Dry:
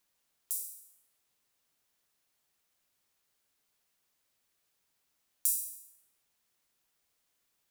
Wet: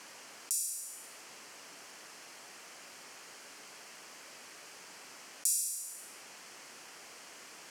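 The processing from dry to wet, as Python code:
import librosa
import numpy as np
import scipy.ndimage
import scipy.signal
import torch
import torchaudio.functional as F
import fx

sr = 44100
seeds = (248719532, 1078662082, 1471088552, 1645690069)

y = fx.bandpass_edges(x, sr, low_hz=240.0, high_hz=6300.0)
y = fx.peak_eq(y, sr, hz=3700.0, db=-11.0, octaves=0.33)
y = fx.env_flatten(y, sr, amount_pct=50)
y = y * librosa.db_to_amplitude(9.0)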